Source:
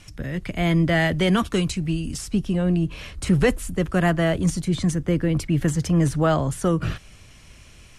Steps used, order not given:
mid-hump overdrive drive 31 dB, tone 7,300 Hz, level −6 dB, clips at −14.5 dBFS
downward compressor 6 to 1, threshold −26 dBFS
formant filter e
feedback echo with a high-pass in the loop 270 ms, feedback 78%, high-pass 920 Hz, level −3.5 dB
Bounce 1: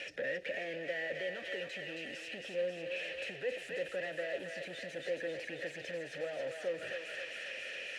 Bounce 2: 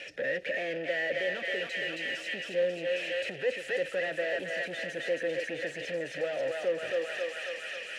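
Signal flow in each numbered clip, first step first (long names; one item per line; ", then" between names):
mid-hump overdrive, then feedback echo with a high-pass in the loop, then downward compressor, then formant filter
feedback echo with a high-pass in the loop, then downward compressor, then mid-hump overdrive, then formant filter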